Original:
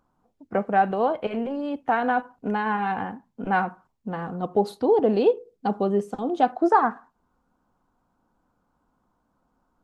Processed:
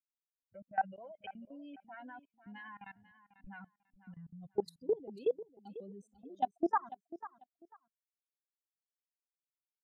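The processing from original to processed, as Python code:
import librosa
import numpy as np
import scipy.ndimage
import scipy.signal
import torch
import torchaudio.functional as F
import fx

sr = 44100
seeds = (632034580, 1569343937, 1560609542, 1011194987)

y = fx.bin_expand(x, sr, power=3.0)
y = fx.peak_eq(y, sr, hz=820.0, db=-3.0, octaves=0.28)
y = fx.level_steps(y, sr, step_db=22)
y = fx.echo_feedback(y, sr, ms=494, feedback_pct=21, wet_db=-15.5)
y = y * 10.0 ** (-5.0 / 20.0)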